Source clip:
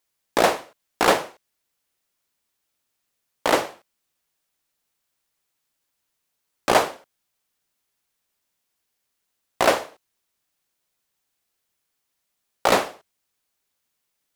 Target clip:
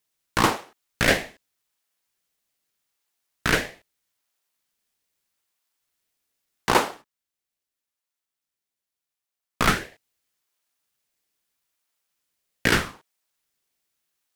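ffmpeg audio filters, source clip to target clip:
-filter_complex "[0:a]asettb=1/sr,asplit=3[s0][s1][s2];[s0]atrim=end=6.734[s3];[s1]atrim=start=6.73:end=9.78,asetpts=PTS-STARTPTS,afade=t=in:d=0.004:c=qsin,afade=t=out:st=3.046:d=0.004:c=qsin,agate=range=0.355:threshold=0.0112:ratio=16:detection=peak[s4];[s2]atrim=start=9.776[s5];[s3][s4]acrossfade=d=0.004:c1=hsin:c2=qsin[s6];[s6][s5]acrossfade=d=0.004:c1=qsin:c2=hsin,highpass=450,aeval=exprs='val(0)*sin(2*PI*700*n/s+700*0.75/0.8*sin(2*PI*0.8*n/s))':c=same,volume=1.26"

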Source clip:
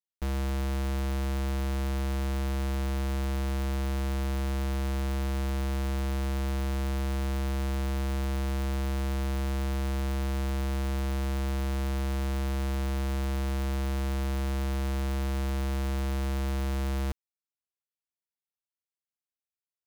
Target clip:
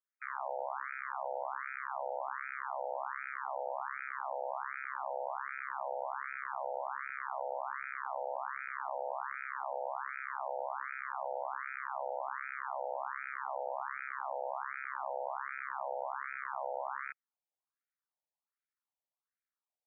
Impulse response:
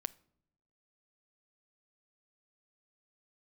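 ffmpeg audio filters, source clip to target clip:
-af "aeval=exprs='val(0)*sin(2*PI*36*n/s)':c=same,highpass=450,lowpass=2300,afftfilt=real='re*between(b*sr/1024,640*pow(1800/640,0.5+0.5*sin(2*PI*1.3*pts/sr))/1.41,640*pow(1800/640,0.5+0.5*sin(2*PI*1.3*pts/sr))*1.41)':imag='im*between(b*sr/1024,640*pow(1800/640,0.5+0.5*sin(2*PI*1.3*pts/sr))/1.41,640*pow(1800/640,0.5+0.5*sin(2*PI*1.3*pts/sr))*1.41)':win_size=1024:overlap=0.75,volume=3.35"

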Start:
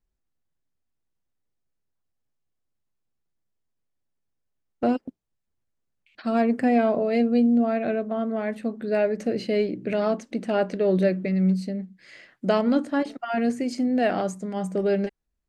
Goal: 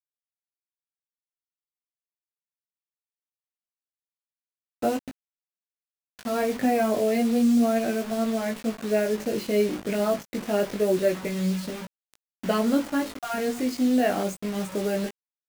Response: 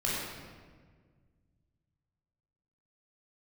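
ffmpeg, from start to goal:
-af "acrusher=bits=5:mix=0:aa=0.000001,flanger=delay=17.5:depth=2.3:speed=0.25,volume=1.26"

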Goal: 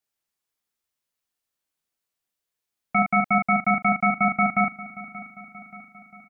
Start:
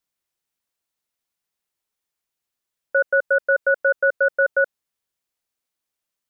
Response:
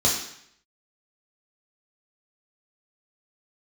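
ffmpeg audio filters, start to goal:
-filter_complex "[0:a]asplit=2[s0][s1];[s1]aecho=0:1:580|1160|1740|2320|2900:0.158|0.0903|0.0515|0.0294|0.0167[s2];[s0][s2]amix=inputs=2:normalize=0,aeval=exprs='val(0)*sin(2*PI*750*n/s)':c=same,asplit=2[s3][s4];[s4]aecho=0:1:13|39:0.376|0.596[s5];[s3][s5]amix=inputs=2:normalize=0"

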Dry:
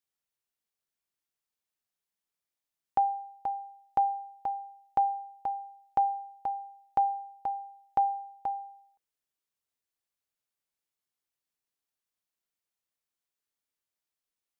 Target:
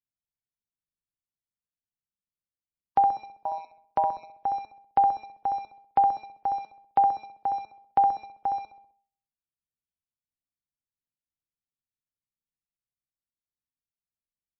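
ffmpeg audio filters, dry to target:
-filter_complex "[0:a]asettb=1/sr,asplit=3[s0][s1][s2];[s0]atrim=end=6.654[s3];[s1]atrim=start=6.65:end=7.47,asetpts=PTS-STARTPTS,afade=t=in:d=0.004:c=qsin,afade=t=out:st=0.816:d=0.004:c=qsin,highpass=46[s4];[s2]atrim=start=7.466[s5];[s3][s4]acrossfade=d=0.004:c1=hsin:c2=qsin[s6];[s6][s5]acrossfade=d=0.004:c1=qsin:c2=hsin,asplit=2[s7][s8];[s8]aeval=exprs='val(0)*gte(abs(val(0)),0.00841)':c=same,volume=0.473[s9];[s7][s9]amix=inputs=2:normalize=0,bandreject=f=215.5:t=h:w=4,bandreject=f=431:t=h:w=4,bandreject=f=646.5:t=h:w=4,bandreject=f=862:t=h:w=4,bandreject=f=1077.5:t=h:w=4,bandreject=f=1293:t=h:w=4,bandreject=f=1508.5:t=h:w=4,bandreject=f=1724:t=h:w=4,asplit=3[s10][s11][s12];[s10]afade=t=out:st=3.43:d=0.02[s13];[s11]tremolo=f=170:d=0.824,afade=t=in:st=3.43:d=0.02,afade=t=out:st=4.28:d=0.02[s14];[s12]afade=t=in:st=4.28:d=0.02[s15];[s13][s14][s15]amix=inputs=3:normalize=0,acrossover=split=250[s16][s17];[s17]agate=range=0.0224:threshold=0.00316:ratio=3:detection=peak[s18];[s16][s18]amix=inputs=2:normalize=0,asplit=2[s19][s20];[s20]adelay=65,lowpass=f=1600:p=1,volume=0.668,asplit=2[s21][s22];[s22]adelay=65,lowpass=f=1600:p=1,volume=0.52,asplit=2[s23][s24];[s24]adelay=65,lowpass=f=1600:p=1,volume=0.52,asplit=2[s25][s26];[s26]adelay=65,lowpass=f=1600:p=1,volume=0.52,asplit=2[s27][s28];[s28]adelay=65,lowpass=f=1600:p=1,volume=0.52,asplit=2[s29][s30];[s30]adelay=65,lowpass=f=1600:p=1,volume=0.52,asplit=2[s31][s32];[s32]adelay=65,lowpass=f=1600:p=1,volume=0.52[s33];[s19][s21][s23][s25][s27][s29][s31][s33]amix=inputs=8:normalize=0,volume=1.19" -ar 22050 -c:a libmp3lame -b:a 24k

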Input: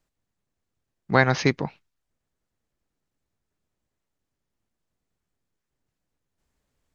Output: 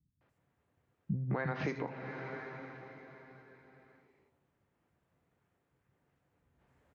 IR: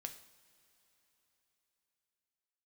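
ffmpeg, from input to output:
-filter_complex "[0:a]asplit=2[s0][s1];[1:a]atrim=start_sample=2205,lowpass=2800[s2];[s1][s2]afir=irnorm=-1:irlink=0,volume=2.82[s3];[s0][s3]amix=inputs=2:normalize=0,acompressor=threshold=0.0794:ratio=6,highpass=82,highshelf=f=5700:g=-7.5,acrossover=split=210|4700[s4][s5][s6];[s5]adelay=210[s7];[s6]adelay=290[s8];[s4][s7][s8]amix=inputs=3:normalize=0,alimiter=level_in=1.26:limit=0.0631:level=0:latency=1:release=399,volume=0.794,volume=1.12"

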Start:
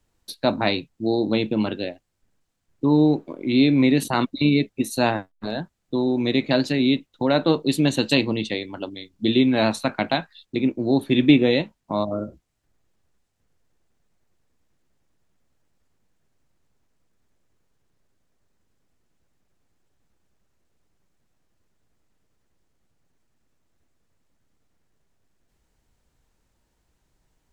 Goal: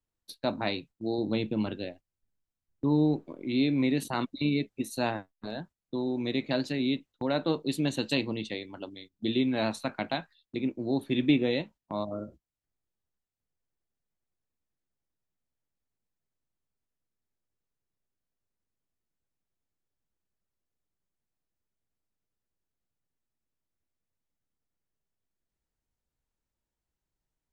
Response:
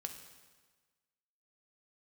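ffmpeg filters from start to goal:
-filter_complex "[0:a]agate=range=0.316:threshold=0.01:ratio=16:detection=peak,asettb=1/sr,asplit=3[s0][s1][s2];[s0]atrim=end=1.184[s3];[s1]atrim=start=1.18:end=3.45,asetpts=PTS-STARTPTS,afade=t=in:d=0.004:c=qsin,afade=t=out:st=2.266:d=0.004:c=qsin,lowshelf=f=130:g=8[s4];[s2]atrim=start=3.446[s5];[s3][s4]acrossfade=d=0.004:c1=hsin:c2=qsin[s6];[s6][s5]acrossfade=d=0.004:c1=qsin:c2=hsin,volume=0.355"

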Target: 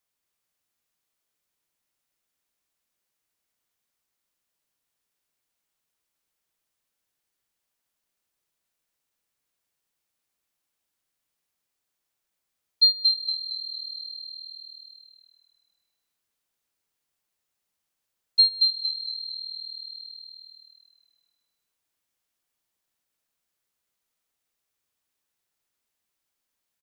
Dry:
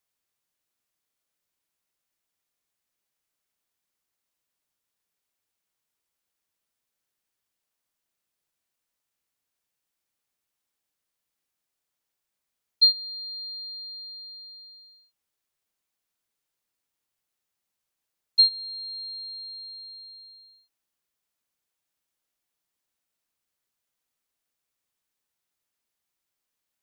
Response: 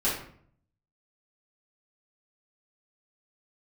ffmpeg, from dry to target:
-filter_complex "[0:a]asplit=6[s0][s1][s2][s3][s4][s5];[s1]adelay=228,afreqshift=-39,volume=0.668[s6];[s2]adelay=456,afreqshift=-78,volume=0.266[s7];[s3]adelay=684,afreqshift=-117,volume=0.107[s8];[s4]adelay=912,afreqshift=-156,volume=0.0427[s9];[s5]adelay=1140,afreqshift=-195,volume=0.0172[s10];[s0][s6][s7][s8][s9][s10]amix=inputs=6:normalize=0"

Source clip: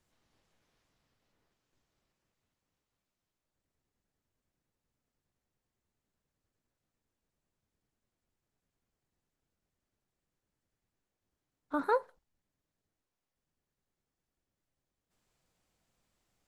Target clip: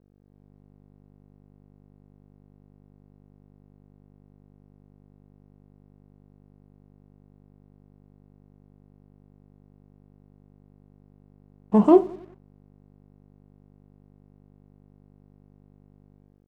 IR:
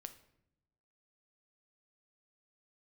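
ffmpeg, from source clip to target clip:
-filter_complex "[0:a]asetrate=32097,aresample=44100,atempo=1.37395,asplit=2[s0][s1];[s1]volume=50.1,asoftclip=hard,volume=0.02,volume=0.447[s2];[s0][s2]amix=inputs=2:normalize=0,agate=range=0.0224:threshold=0.00112:ratio=3:detection=peak,aeval=exprs='val(0)+0.00126*(sin(2*PI*50*n/s)+sin(2*PI*2*50*n/s)/2+sin(2*PI*3*50*n/s)/3+sin(2*PI*4*50*n/s)/4+sin(2*PI*5*50*n/s)/5)':c=same,equalizer=f=170:w=0.89:g=9,dynaudnorm=f=130:g=5:m=1.5,equalizer=f=370:w=0.95:g=8,asplit=2[s3][s4];[s4]adelay=33,volume=0.251[s5];[s3][s5]amix=inputs=2:normalize=0,asplit=2[s6][s7];[s7]adelay=92,lowpass=f=2100:p=1,volume=0.1,asplit=2[s8][s9];[s9]adelay=92,lowpass=f=2100:p=1,volume=0.54,asplit=2[s10][s11];[s11]adelay=92,lowpass=f=2100:p=1,volume=0.54,asplit=2[s12][s13];[s13]adelay=92,lowpass=f=2100:p=1,volume=0.54[s14];[s8][s10][s12][s14]amix=inputs=4:normalize=0[s15];[s6][s15]amix=inputs=2:normalize=0,aeval=exprs='sgn(val(0))*max(abs(val(0))-0.002,0)':c=same"

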